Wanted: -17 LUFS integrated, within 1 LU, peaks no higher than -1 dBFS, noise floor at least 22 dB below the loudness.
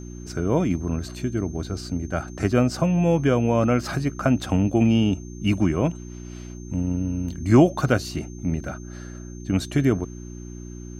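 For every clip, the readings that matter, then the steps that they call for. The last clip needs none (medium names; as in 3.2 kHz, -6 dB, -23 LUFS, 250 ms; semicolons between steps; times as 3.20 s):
hum 60 Hz; highest harmonic 360 Hz; hum level -35 dBFS; steady tone 6.3 kHz; tone level -48 dBFS; loudness -23.0 LUFS; peak level -4.5 dBFS; loudness target -17.0 LUFS
-> de-hum 60 Hz, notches 6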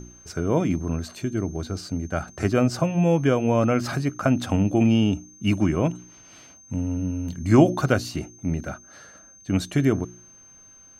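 hum not found; steady tone 6.3 kHz; tone level -48 dBFS
-> band-stop 6.3 kHz, Q 30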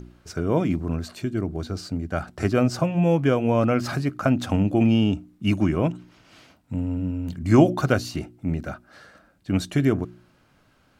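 steady tone not found; loudness -23.5 LUFS; peak level -3.5 dBFS; loudness target -17.0 LUFS
-> trim +6.5 dB; peak limiter -1 dBFS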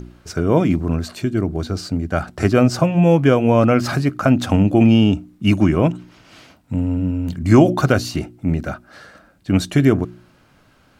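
loudness -17.5 LUFS; peak level -1.0 dBFS; noise floor -54 dBFS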